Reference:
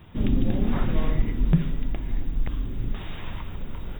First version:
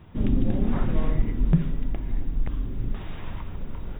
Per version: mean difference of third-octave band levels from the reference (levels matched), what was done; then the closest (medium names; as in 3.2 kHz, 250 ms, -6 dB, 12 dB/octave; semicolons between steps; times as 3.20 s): 2.0 dB: treble shelf 2.8 kHz -10.5 dB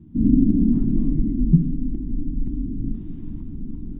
13.5 dB: FFT filter 110 Hz 0 dB, 290 Hz +13 dB, 510 Hz -21 dB, 930 Hz -23 dB, 2.2 kHz -28 dB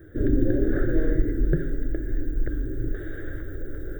7.0 dB: FFT filter 130 Hz 0 dB, 200 Hz -16 dB, 310 Hz +12 dB, 560 Hz +5 dB, 980 Hz -28 dB, 1.6 kHz +11 dB, 2.6 kHz -27 dB, 5.9 kHz +4 dB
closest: first